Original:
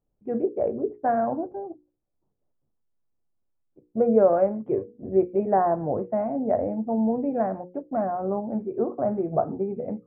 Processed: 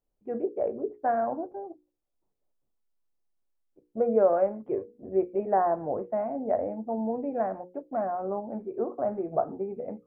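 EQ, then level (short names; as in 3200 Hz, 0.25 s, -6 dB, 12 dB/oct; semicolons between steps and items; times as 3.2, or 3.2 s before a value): bell 120 Hz -10 dB 2.4 oct; -1.5 dB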